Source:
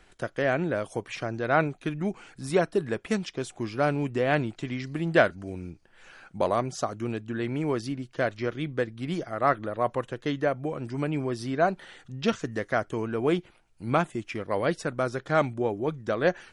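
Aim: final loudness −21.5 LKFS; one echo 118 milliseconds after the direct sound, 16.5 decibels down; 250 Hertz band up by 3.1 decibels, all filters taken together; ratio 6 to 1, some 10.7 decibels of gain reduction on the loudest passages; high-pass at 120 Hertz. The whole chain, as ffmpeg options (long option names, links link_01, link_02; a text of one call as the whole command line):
ffmpeg -i in.wav -af "highpass=120,equalizer=frequency=250:width_type=o:gain=4.5,acompressor=threshold=-26dB:ratio=6,aecho=1:1:118:0.15,volume=11dB" out.wav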